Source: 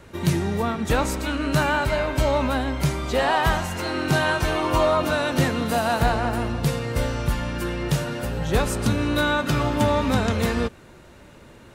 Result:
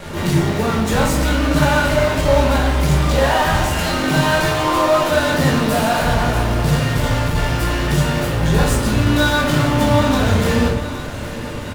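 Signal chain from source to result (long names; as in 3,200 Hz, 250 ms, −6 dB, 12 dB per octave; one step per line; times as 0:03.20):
0:04.43–0:05.09: elliptic high-pass filter 300 Hz
in parallel at −7.5 dB: fuzz pedal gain 43 dB, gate −49 dBFS
on the sum: repeating echo 816 ms, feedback 58%, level −15 dB
rectangular room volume 120 cubic metres, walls mixed, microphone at 1.3 metres
level that may rise only so fast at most 140 dB per second
level −6 dB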